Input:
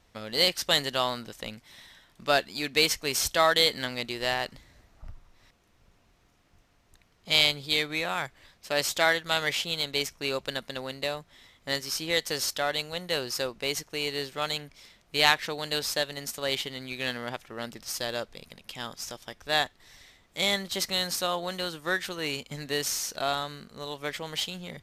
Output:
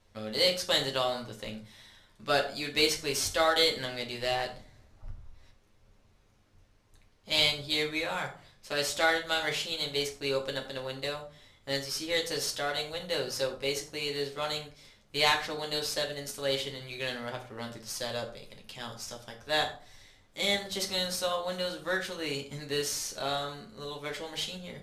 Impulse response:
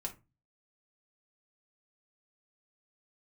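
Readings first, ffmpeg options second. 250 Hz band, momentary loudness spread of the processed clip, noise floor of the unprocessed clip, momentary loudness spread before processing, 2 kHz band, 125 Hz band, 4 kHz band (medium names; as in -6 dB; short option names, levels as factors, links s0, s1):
-2.0 dB, 16 LU, -65 dBFS, 15 LU, -3.5 dB, -1.5 dB, -3.0 dB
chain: -filter_complex "[1:a]atrim=start_sample=2205,asetrate=25137,aresample=44100[s0];[0:a][s0]afir=irnorm=-1:irlink=0,volume=0.531"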